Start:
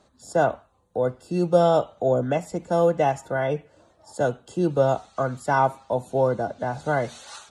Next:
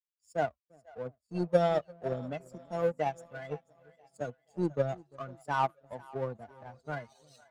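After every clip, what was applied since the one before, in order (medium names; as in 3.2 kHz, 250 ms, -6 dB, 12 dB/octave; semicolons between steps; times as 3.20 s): expander on every frequency bin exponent 2; two-band feedback delay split 550 Hz, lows 346 ms, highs 489 ms, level -16 dB; power-law waveshaper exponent 1.4; trim -2.5 dB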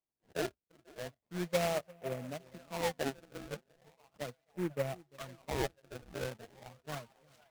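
decimation with a swept rate 25×, swing 160% 0.37 Hz; saturation -16.5 dBFS, distortion -19 dB; delay time shaken by noise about 1.5 kHz, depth 0.067 ms; trim -4.5 dB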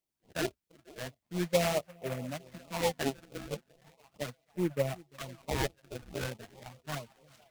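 LFO notch sine 4.6 Hz 400–1700 Hz; trim +5 dB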